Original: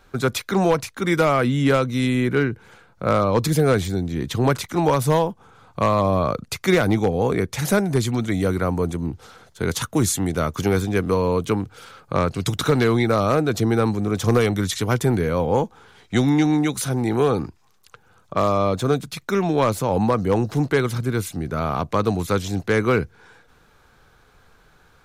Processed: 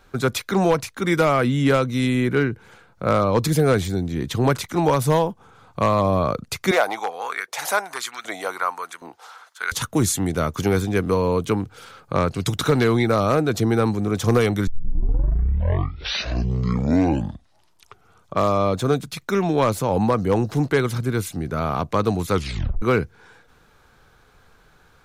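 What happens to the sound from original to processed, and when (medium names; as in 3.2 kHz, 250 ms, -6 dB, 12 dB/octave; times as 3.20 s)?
6.71–9.72 s: LFO high-pass saw up 1.3 Hz 640–1600 Hz
14.67 s: tape start 3.69 s
22.33 s: tape stop 0.49 s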